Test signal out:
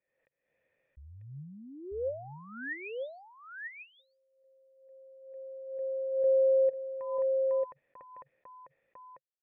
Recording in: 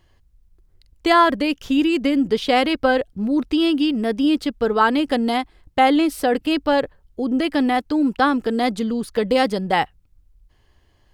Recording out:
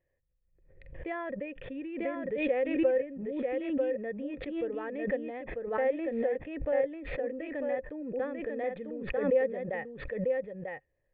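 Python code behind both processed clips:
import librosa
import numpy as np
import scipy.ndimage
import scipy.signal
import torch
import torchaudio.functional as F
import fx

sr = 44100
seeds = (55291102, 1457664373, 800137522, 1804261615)

p1 = fx.formant_cascade(x, sr, vowel='e')
p2 = fx.peak_eq(p1, sr, hz=140.0, db=7.5, octaves=0.43)
p3 = p2 + fx.echo_single(p2, sr, ms=944, db=-4.0, dry=0)
p4 = fx.pre_swell(p3, sr, db_per_s=61.0)
y = F.gain(torch.from_numpy(p4), -5.5).numpy()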